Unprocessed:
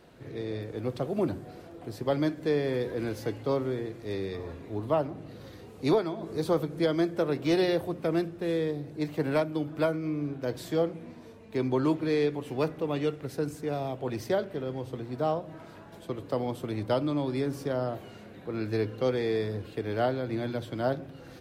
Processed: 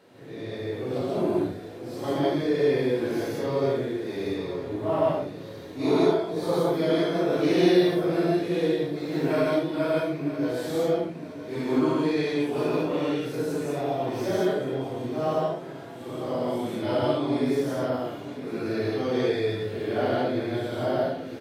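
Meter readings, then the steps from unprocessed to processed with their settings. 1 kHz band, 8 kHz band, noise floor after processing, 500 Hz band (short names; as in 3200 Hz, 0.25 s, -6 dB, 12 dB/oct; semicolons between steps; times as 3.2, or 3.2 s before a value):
+4.5 dB, +5.0 dB, -40 dBFS, +4.5 dB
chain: phase scrambler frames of 0.2 s; HPF 140 Hz 12 dB/oct; on a send: feedback echo 0.959 s, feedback 38%, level -13 dB; on the sum: non-linear reverb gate 0.19 s rising, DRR -2.5 dB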